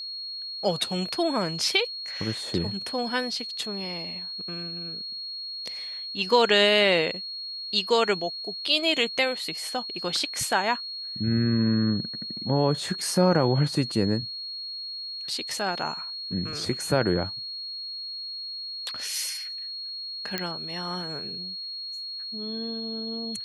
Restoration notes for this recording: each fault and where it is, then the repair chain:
whistle 4,300 Hz −33 dBFS
0:20.38: click −12 dBFS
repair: click removal
notch filter 4,300 Hz, Q 30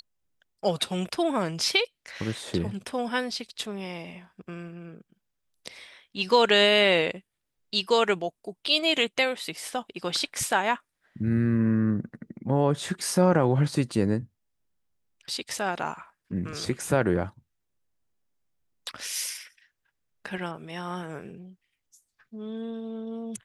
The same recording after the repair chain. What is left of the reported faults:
none of them is left

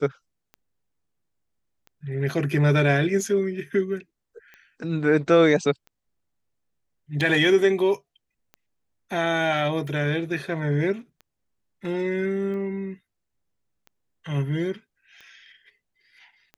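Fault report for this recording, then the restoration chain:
scratch tick 45 rpm −30 dBFS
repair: click removal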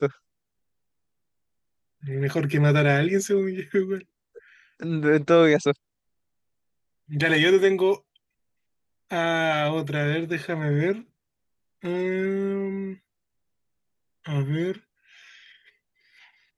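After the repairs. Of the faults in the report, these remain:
none of them is left

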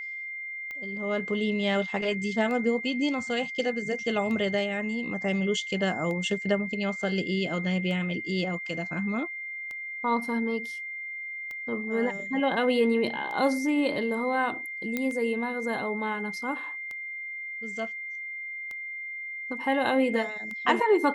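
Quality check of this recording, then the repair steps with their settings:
scratch tick 33 1/3 rpm −25 dBFS
whistle 2,100 Hz −34 dBFS
0:14.97: click −15 dBFS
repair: click removal
notch filter 2,100 Hz, Q 30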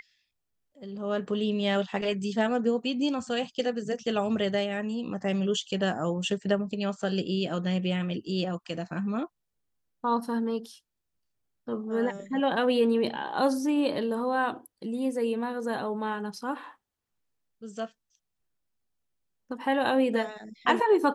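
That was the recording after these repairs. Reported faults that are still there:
none of them is left

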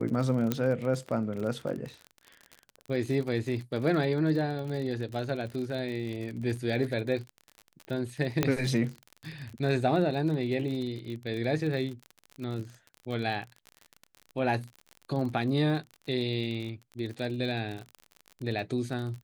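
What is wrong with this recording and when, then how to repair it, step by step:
surface crackle 44 per second −35 dBFS
0:00.52: click −13 dBFS
0:08.43: click −10 dBFS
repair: click removal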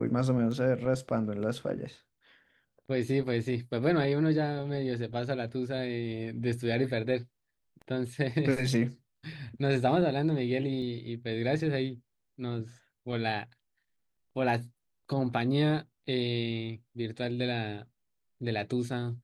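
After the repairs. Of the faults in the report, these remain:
0:00.52: click

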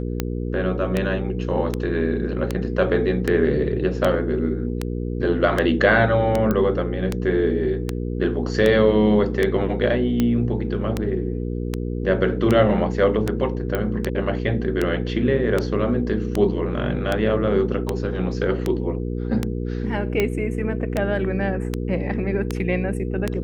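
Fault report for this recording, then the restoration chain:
mains hum 60 Hz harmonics 8 −26 dBFS
scratch tick 78 rpm −8 dBFS
0:06.51: click −10 dBFS
0:13.75: click −11 dBFS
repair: click removal
hum removal 60 Hz, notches 8

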